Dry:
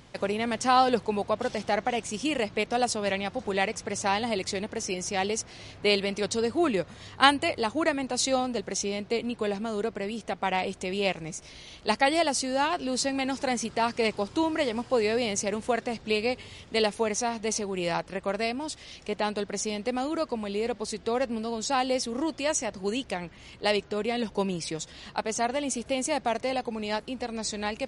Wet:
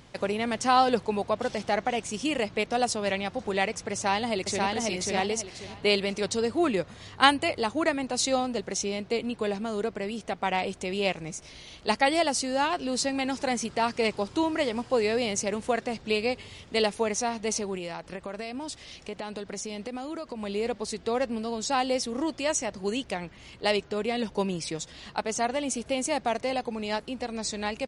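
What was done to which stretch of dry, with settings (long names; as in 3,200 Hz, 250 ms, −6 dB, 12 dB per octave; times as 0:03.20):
0:03.92–0:04.68: delay throw 540 ms, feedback 30%, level −2 dB
0:17.75–0:20.43: downward compressor 10 to 1, threshold −31 dBFS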